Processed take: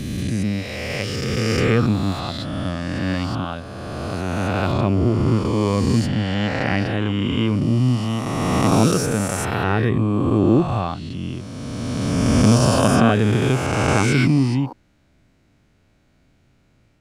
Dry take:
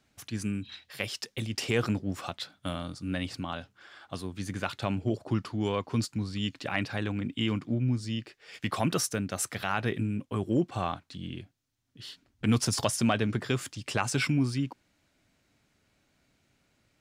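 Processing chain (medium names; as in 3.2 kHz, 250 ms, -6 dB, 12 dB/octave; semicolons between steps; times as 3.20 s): reverse spectral sustain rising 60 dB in 2.86 s; tilt EQ -2 dB/octave; trim +3.5 dB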